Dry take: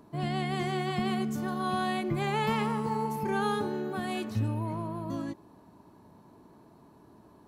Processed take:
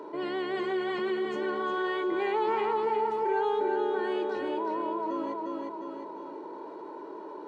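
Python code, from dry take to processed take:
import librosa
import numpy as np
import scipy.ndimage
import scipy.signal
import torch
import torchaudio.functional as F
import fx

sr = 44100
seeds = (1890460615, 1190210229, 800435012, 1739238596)

y = scipy.signal.sosfilt(scipy.signal.butter(6, 260.0, 'highpass', fs=sr, output='sos'), x)
y = y + 0.8 * np.pad(y, (int(2.1 * sr / 1000.0), 0))[:len(y)]
y = fx.quant_float(y, sr, bits=4)
y = fx.spacing_loss(y, sr, db_at_10k=31)
y = fx.echo_feedback(y, sr, ms=355, feedback_pct=38, wet_db=-5)
y = fx.env_flatten(y, sr, amount_pct=50)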